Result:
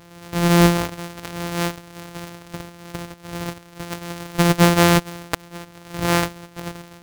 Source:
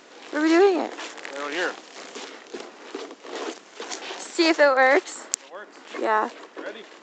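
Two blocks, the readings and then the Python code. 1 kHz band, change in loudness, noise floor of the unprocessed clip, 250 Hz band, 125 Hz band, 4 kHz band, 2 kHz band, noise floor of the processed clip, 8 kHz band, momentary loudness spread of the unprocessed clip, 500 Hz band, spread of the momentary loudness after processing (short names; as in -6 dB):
+1.5 dB, +3.0 dB, -49 dBFS, +5.5 dB, n/a, +4.5 dB, -1.0 dB, -46 dBFS, +5.0 dB, 20 LU, -1.5 dB, 21 LU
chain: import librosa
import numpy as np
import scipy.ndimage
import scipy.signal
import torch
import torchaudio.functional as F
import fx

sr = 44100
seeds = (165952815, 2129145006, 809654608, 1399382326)

y = np.r_[np.sort(x[:len(x) // 256 * 256].reshape(-1, 256), axis=1).ravel(), x[len(x) // 256 * 256:]]
y = y * librosa.db_to_amplitude(3.0)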